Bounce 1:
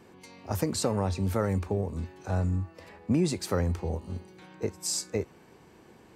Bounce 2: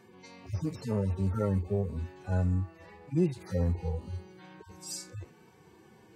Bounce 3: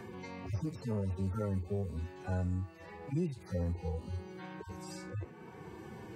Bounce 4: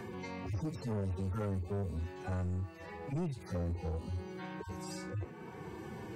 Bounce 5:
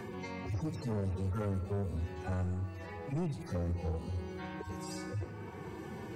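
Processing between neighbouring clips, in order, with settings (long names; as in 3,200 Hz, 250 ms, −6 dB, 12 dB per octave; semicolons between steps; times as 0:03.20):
harmonic-percussive split with one part muted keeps harmonic
multiband upward and downward compressor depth 70%; level −5 dB
soft clipping −34.5 dBFS, distortion −11 dB; level +3 dB
convolution reverb RT60 1.5 s, pre-delay 113 ms, DRR 12 dB; level +1 dB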